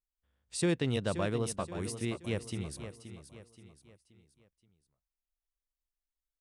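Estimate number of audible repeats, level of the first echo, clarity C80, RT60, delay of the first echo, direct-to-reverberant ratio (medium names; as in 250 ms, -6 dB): 4, -11.0 dB, no reverb, no reverb, 526 ms, no reverb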